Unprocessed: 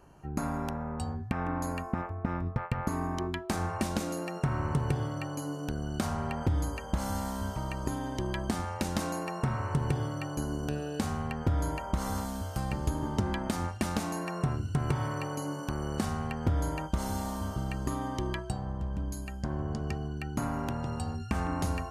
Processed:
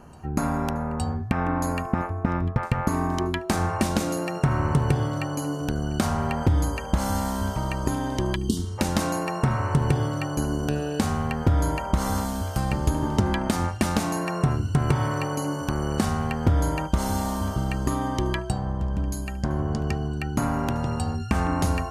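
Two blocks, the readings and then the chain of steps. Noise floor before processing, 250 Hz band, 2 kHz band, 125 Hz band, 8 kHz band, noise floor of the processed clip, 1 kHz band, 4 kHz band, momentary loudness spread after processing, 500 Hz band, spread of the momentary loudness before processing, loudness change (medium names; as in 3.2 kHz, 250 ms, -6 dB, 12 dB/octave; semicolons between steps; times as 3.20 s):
-40 dBFS, +7.5 dB, +7.5 dB, +7.5 dB, +7.5 dB, -33 dBFS, +7.5 dB, +7.5 dB, 5 LU, +7.5 dB, 5 LU, +7.5 dB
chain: spectral selection erased 8.35–8.78 s, 460–2800 Hz; reverse echo 865 ms -23.5 dB; trim +7.5 dB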